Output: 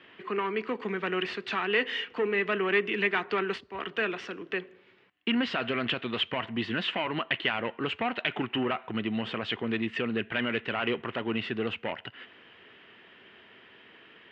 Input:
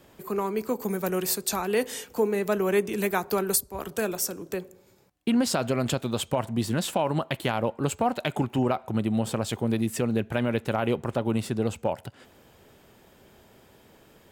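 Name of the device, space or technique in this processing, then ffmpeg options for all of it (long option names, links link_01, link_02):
overdrive pedal into a guitar cabinet: -filter_complex "[0:a]asplit=2[link_01][link_02];[link_02]highpass=frequency=720:poles=1,volume=16dB,asoftclip=type=tanh:threshold=-11dB[link_03];[link_01][link_03]amix=inputs=2:normalize=0,lowpass=frequency=3000:poles=1,volume=-6dB,highpass=99,equalizer=frequency=150:width_type=q:width=4:gain=-4,equalizer=frequency=570:width_type=q:width=4:gain=-9,equalizer=frequency=830:width_type=q:width=4:gain=-8,equalizer=frequency=1900:width_type=q:width=4:gain=8,equalizer=frequency=2900:width_type=q:width=4:gain=10,lowpass=frequency=3500:width=0.5412,lowpass=frequency=3500:width=1.3066,volume=-5dB"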